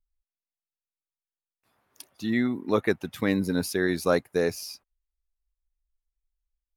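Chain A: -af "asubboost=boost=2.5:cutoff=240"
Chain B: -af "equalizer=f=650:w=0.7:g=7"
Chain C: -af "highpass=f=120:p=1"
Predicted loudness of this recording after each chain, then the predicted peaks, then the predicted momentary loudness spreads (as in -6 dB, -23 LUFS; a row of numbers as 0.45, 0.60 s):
-26.0, -23.0, -27.5 LUFS; -10.0, -4.0, -9.0 dBFS; 7, 9, 11 LU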